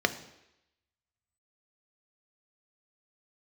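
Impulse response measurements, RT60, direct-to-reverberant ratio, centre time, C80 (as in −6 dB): 0.85 s, 8.5 dB, 6 ms, 16.5 dB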